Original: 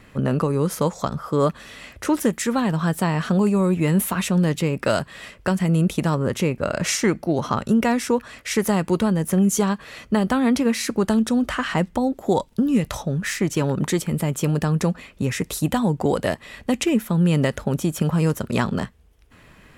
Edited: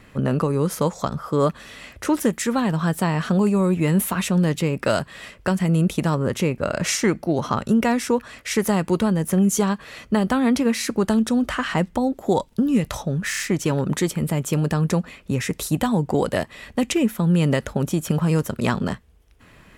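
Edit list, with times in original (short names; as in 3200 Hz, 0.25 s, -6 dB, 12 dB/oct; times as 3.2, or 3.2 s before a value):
13.3 stutter 0.03 s, 4 plays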